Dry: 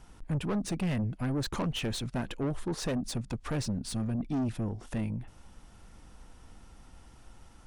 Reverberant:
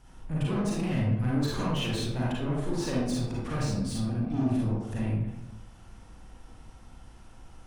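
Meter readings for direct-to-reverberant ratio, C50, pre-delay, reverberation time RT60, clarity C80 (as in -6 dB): -6.5 dB, -2.5 dB, 34 ms, 0.95 s, 2.5 dB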